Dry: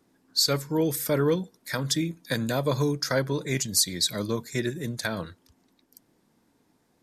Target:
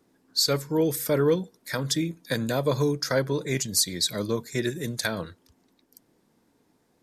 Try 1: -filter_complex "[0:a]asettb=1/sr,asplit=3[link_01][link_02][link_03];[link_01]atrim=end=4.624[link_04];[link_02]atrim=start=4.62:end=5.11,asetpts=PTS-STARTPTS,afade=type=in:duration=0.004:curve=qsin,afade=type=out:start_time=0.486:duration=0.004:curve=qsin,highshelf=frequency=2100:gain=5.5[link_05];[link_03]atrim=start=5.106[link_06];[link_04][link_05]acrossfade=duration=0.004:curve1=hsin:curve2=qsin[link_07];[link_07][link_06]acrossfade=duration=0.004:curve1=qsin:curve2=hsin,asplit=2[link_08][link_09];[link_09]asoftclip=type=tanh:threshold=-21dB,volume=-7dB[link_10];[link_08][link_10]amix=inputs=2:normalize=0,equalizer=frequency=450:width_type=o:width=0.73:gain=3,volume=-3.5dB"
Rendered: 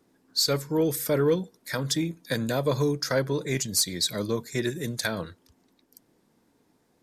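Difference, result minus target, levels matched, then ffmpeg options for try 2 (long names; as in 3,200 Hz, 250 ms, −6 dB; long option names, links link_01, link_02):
soft clipping: distortion +18 dB
-filter_complex "[0:a]asettb=1/sr,asplit=3[link_01][link_02][link_03];[link_01]atrim=end=4.624[link_04];[link_02]atrim=start=4.62:end=5.11,asetpts=PTS-STARTPTS,afade=type=in:duration=0.004:curve=qsin,afade=type=out:start_time=0.486:duration=0.004:curve=qsin,highshelf=frequency=2100:gain=5.5[link_05];[link_03]atrim=start=5.106[link_06];[link_04][link_05]acrossfade=duration=0.004:curve1=hsin:curve2=qsin[link_07];[link_07][link_06]acrossfade=duration=0.004:curve1=qsin:curve2=hsin,asplit=2[link_08][link_09];[link_09]asoftclip=type=tanh:threshold=-9dB,volume=-7dB[link_10];[link_08][link_10]amix=inputs=2:normalize=0,equalizer=frequency=450:width_type=o:width=0.73:gain=3,volume=-3.5dB"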